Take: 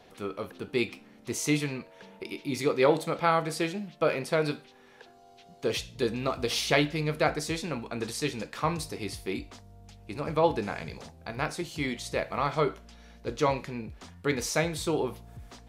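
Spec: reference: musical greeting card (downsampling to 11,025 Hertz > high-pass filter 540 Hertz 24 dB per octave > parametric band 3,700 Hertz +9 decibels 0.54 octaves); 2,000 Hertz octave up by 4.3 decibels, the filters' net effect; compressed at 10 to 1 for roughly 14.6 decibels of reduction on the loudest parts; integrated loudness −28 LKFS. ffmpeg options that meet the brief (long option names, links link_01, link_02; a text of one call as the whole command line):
ffmpeg -i in.wav -af "equalizer=frequency=2000:width_type=o:gain=4,acompressor=threshold=-32dB:ratio=10,aresample=11025,aresample=44100,highpass=frequency=540:width=0.5412,highpass=frequency=540:width=1.3066,equalizer=frequency=3700:width_type=o:width=0.54:gain=9,volume=10dB" out.wav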